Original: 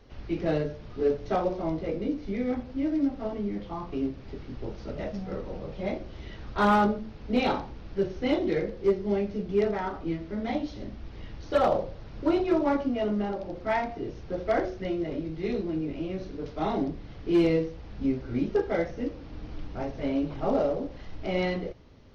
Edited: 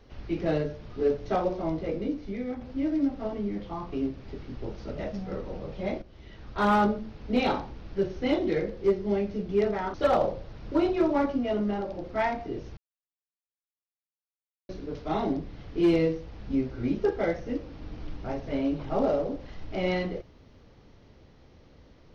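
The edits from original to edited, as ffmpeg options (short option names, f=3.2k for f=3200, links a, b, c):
-filter_complex "[0:a]asplit=6[a][b][c][d][e][f];[a]atrim=end=2.61,asetpts=PTS-STARTPTS,afade=t=out:st=1.98:d=0.63:silence=0.473151[g];[b]atrim=start=2.61:end=6.02,asetpts=PTS-STARTPTS,afade=t=in:d=0.004:c=hsin:silence=0.473151,afade=t=out:st=3.406:d=0.004:c=hsin:silence=0.251189[h];[c]atrim=start=6.02:end=9.942,asetpts=PTS-STARTPTS,afade=t=in:d=0.82:silence=0.251189[i];[d]atrim=start=11.448:end=14.28,asetpts=PTS-STARTPTS,afade=t=out:st=2.828:d=0.004:c=hsin[j];[e]atrim=start=14.28:end=16.2,asetpts=PTS-STARTPTS,volume=0[k];[f]atrim=start=16.2,asetpts=PTS-STARTPTS,afade=t=in:d=0.004:c=hsin[l];[g][h][i]concat=n=3:v=0:a=1[m];[j][k][l]concat=n=3:v=0:a=1[n];[m][n]acrossfade=d=0.004:c1=hsin:c2=hsin"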